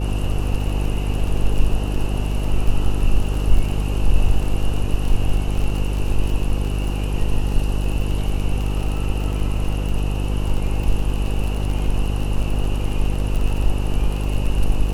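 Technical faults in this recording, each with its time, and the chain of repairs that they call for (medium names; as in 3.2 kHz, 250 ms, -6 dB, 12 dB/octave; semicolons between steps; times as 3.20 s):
buzz 50 Hz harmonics 10 -22 dBFS
crackle 31 per s -24 dBFS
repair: de-click; de-hum 50 Hz, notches 10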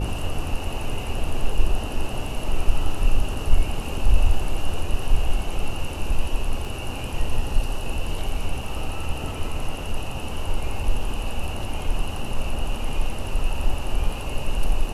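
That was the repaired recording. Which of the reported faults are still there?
nothing left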